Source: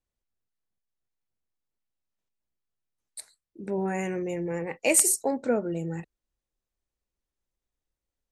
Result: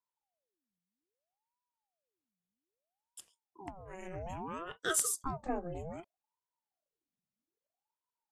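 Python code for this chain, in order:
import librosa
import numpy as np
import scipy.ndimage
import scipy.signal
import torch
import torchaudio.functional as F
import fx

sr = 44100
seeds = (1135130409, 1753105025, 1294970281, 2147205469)

y = fx.over_compress(x, sr, threshold_db=-34.0, ratio=-0.5, at=(3.64, 4.13), fade=0.02)
y = fx.ring_lfo(y, sr, carrier_hz=580.0, swing_pct=70, hz=0.62)
y = F.gain(torch.from_numpy(y), -7.5).numpy()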